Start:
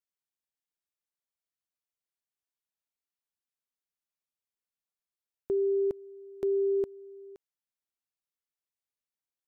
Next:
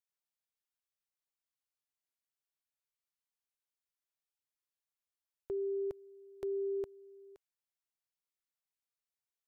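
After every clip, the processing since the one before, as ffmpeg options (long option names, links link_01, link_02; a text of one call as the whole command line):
ffmpeg -i in.wav -af "equalizer=frequency=240:width_type=o:width=1.1:gain=-14.5,volume=-3dB" out.wav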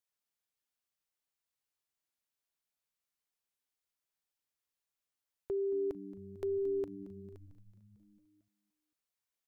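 ffmpeg -i in.wav -filter_complex "[0:a]asplit=8[link_01][link_02][link_03][link_04][link_05][link_06][link_07][link_08];[link_02]adelay=224,afreqshift=-100,volume=-15dB[link_09];[link_03]adelay=448,afreqshift=-200,volume=-18.7dB[link_10];[link_04]adelay=672,afreqshift=-300,volume=-22.5dB[link_11];[link_05]adelay=896,afreqshift=-400,volume=-26.2dB[link_12];[link_06]adelay=1120,afreqshift=-500,volume=-30dB[link_13];[link_07]adelay=1344,afreqshift=-600,volume=-33.7dB[link_14];[link_08]adelay=1568,afreqshift=-700,volume=-37.5dB[link_15];[link_01][link_09][link_10][link_11][link_12][link_13][link_14][link_15]amix=inputs=8:normalize=0,volume=2dB" out.wav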